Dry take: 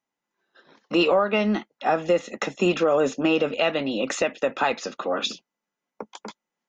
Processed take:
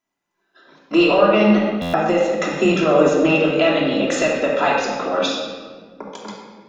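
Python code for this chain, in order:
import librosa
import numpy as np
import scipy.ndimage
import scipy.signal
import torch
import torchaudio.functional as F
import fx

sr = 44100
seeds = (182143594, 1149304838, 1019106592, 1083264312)

y = fx.room_shoebox(x, sr, seeds[0], volume_m3=1900.0, walls='mixed', distance_m=3.0)
y = fx.buffer_glitch(y, sr, at_s=(1.81,), block=512, repeats=10)
y = y * 10.0 ** (1.0 / 20.0)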